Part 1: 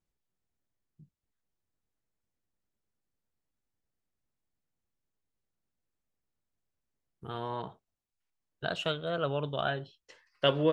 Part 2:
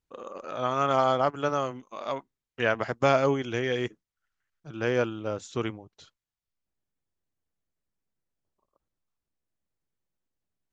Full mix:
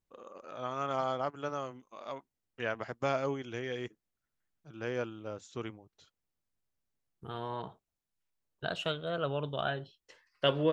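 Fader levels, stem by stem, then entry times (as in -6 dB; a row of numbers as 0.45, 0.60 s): -2.0, -9.5 dB; 0.00, 0.00 s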